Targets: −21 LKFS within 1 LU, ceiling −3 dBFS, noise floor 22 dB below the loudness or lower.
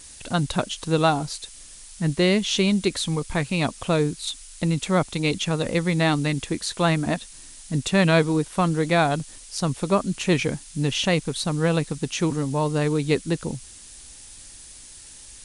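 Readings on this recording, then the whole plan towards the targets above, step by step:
background noise floor −44 dBFS; target noise floor −46 dBFS; integrated loudness −23.5 LKFS; sample peak −6.5 dBFS; target loudness −21.0 LKFS
→ noise reduction from a noise print 6 dB
level +2.5 dB

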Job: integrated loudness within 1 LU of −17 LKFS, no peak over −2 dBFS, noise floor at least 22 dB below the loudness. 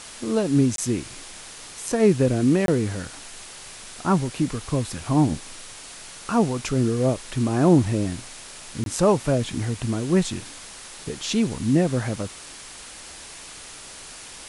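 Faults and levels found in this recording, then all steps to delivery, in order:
number of dropouts 3; longest dropout 22 ms; background noise floor −41 dBFS; target noise floor −45 dBFS; integrated loudness −23.0 LKFS; sample peak −5.0 dBFS; target loudness −17.0 LKFS
→ repair the gap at 0:00.76/0:02.66/0:08.84, 22 ms
broadband denoise 6 dB, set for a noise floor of −41 dBFS
level +6 dB
brickwall limiter −2 dBFS

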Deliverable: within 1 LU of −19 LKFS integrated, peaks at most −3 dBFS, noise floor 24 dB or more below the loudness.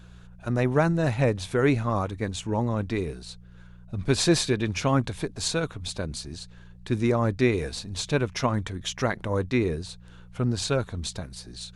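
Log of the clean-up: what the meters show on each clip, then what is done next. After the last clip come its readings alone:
mains hum 60 Hz; hum harmonics up to 180 Hz; level of the hum −49 dBFS; integrated loudness −26.5 LKFS; sample peak −8.0 dBFS; target loudness −19.0 LKFS
→ hum removal 60 Hz, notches 3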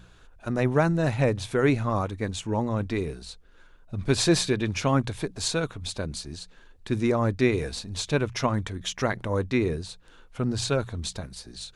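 mains hum none found; integrated loudness −27.0 LKFS; sample peak −8.5 dBFS; target loudness −19.0 LKFS
→ level +8 dB
brickwall limiter −3 dBFS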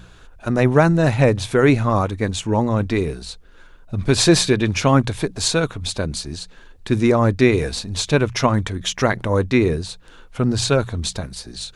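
integrated loudness −19.0 LKFS; sample peak −3.0 dBFS; background noise floor −46 dBFS

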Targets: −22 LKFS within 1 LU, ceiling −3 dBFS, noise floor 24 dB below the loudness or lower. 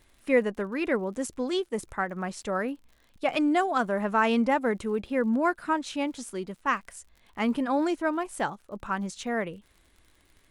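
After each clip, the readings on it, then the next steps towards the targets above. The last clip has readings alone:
crackle rate 58 per second; integrated loudness −28.5 LKFS; sample peak −10.5 dBFS; target loudness −22.0 LKFS
→ click removal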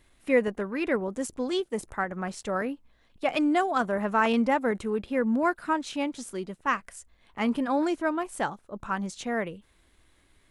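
crackle rate 0.19 per second; integrated loudness −28.5 LKFS; sample peak −10.5 dBFS; target loudness −22.0 LKFS
→ level +6.5 dB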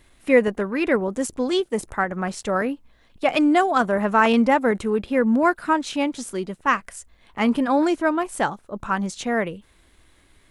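integrated loudness −22.0 LKFS; sample peak −4.0 dBFS; background noise floor −58 dBFS

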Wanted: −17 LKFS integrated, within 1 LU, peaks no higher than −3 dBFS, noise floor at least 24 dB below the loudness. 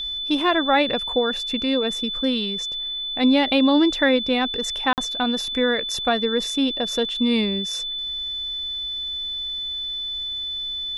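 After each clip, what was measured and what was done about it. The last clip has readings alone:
number of dropouts 1; longest dropout 48 ms; interfering tone 3,500 Hz; level of the tone −26 dBFS; integrated loudness −22.0 LKFS; sample peak −6.5 dBFS; target loudness −17.0 LKFS
→ repair the gap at 0:04.93, 48 ms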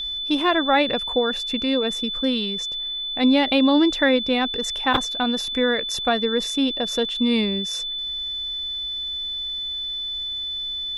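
number of dropouts 0; interfering tone 3,500 Hz; level of the tone −26 dBFS
→ notch filter 3,500 Hz, Q 30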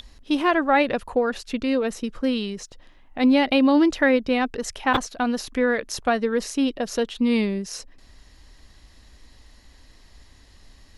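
interfering tone none found; integrated loudness −22.5 LKFS; sample peak −7.5 dBFS; target loudness −17.0 LKFS
→ level +5.5 dB
brickwall limiter −3 dBFS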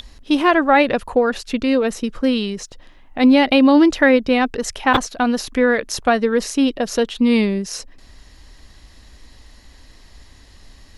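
integrated loudness −17.0 LKFS; sample peak −3.0 dBFS; background noise floor −46 dBFS

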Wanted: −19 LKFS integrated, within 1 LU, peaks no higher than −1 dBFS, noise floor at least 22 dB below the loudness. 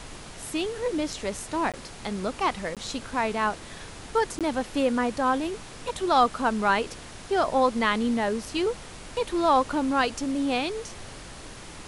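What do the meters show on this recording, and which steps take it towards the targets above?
number of dropouts 3; longest dropout 17 ms; background noise floor −43 dBFS; target noise floor −49 dBFS; integrated loudness −26.5 LKFS; sample peak −9.0 dBFS; target loudness −19.0 LKFS
→ repair the gap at 0:01.72/0:02.75/0:04.39, 17 ms
noise reduction from a noise print 6 dB
level +7.5 dB

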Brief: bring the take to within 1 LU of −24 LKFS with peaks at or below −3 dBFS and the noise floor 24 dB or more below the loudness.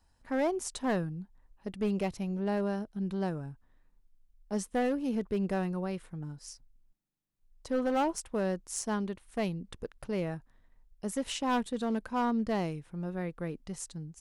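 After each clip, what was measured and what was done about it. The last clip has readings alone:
share of clipped samples 1.1%; peaks flattened at −24.0 dBFS; integrated loudness −33.5 LKFS; sample peak −24.0 dBFS; target loudness −24.0 LKFS
→ clipped peaks rebuilt −24 dBFS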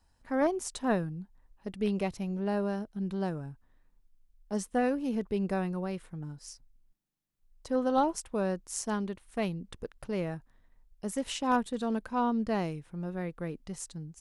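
share of clipped samples 0.0%; integrated loudness −33.0 LKFS; sample peak −15.0 dBFS; target loudness −24.0 LKFS
→ level +9 dB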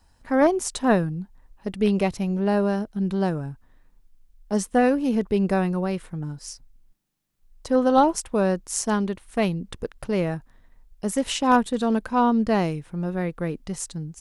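integrated loudness −24.0 LKFS; sample peak −6.0 dBFS; background noise floor −60 dBFS

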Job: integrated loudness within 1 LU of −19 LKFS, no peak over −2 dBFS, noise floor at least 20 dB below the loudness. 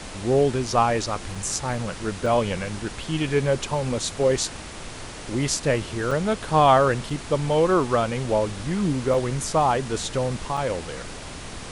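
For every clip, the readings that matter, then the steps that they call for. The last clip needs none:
number of dropouts 6; longest dropout 3.4 ms; background noise floor −37 dBFS; target noise floor −44 dBFS; integrated loudness −23.5 LKFS; sample peak −5.5 dBFS; target loudness −19.0 LKFS
→ repair the gap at 0:01.35/0:02.26/0:06.11/0:07.10/0:09.14/0:10.57, 3.4 ms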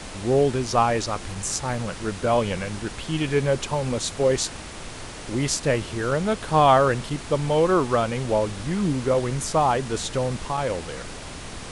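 number of dropouts 0; background noise floor −37 dBFS; target noise floor −44 dBFS
→ noise reduction from a noise print 7 dB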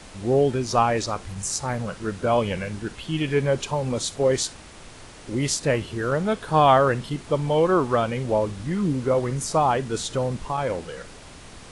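background noise floor −44 dBFS; integrated loudness −23.5 LKFS; sample peak −5.5 dBFS; target loudness −19.0 LKFS
→ level +4.5 dB
brickwall limiter −2 dBFS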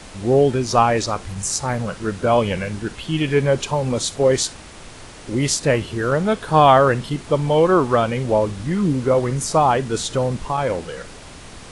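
integrated loudness −19.0 LKFS; sample peak −2.0 dBFS; background noise floor −39 dBFS

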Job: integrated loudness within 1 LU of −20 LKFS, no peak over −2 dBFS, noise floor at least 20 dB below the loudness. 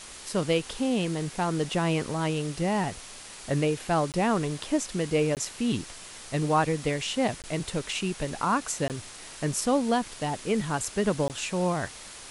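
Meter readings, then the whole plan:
number of dropouts 5; longest dropout 18 ms; background noise floor −44 dBFS; target noise floor −48 dBFS; integrated loudness −28.0 LKFS; sample peak −11.0 dBFS; target loudness −20.0 LKFS
→ repair the gap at 0:04.12/0:05.35/0:07.42/0:08.88/0:11.28, 18 ms
noise reduction from a noise print 6 dB
level +8 dB

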